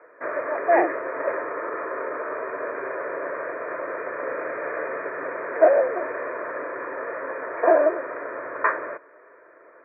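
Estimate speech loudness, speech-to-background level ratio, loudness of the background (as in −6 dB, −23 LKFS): −24.5 LKFS, 2.0 dB, −26.5 LKFS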